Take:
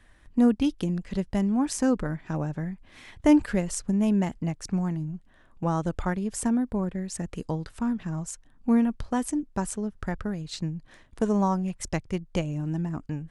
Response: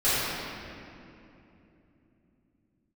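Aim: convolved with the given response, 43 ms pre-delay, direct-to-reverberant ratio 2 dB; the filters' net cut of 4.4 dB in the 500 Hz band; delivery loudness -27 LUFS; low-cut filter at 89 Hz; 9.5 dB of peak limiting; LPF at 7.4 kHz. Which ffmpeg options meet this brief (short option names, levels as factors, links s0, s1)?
-filter_complex "[0:a]highpass=89,lowpass=7400,equalizer=f=500:t=o:g=-5.5,alimiter=limit=0.1:level=0:latency=1,asplit=2[s0][s1];[1:a]atrim=start_sample=2205,adelay=43[s2];[s1][s2]afir=irnorm=-1:irlink=0,volume=0.119[s3];[s0][s3]amix=inputs=2:normalize=0,volume=1.26"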